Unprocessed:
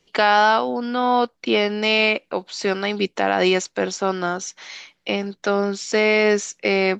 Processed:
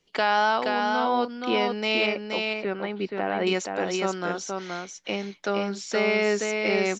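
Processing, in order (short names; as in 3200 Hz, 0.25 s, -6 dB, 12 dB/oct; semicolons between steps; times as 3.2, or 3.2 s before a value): 2.06–3.47 air absorption 380 m; on a send: echo 0.474 s -4 dB; on the sum: gain -6.5 dB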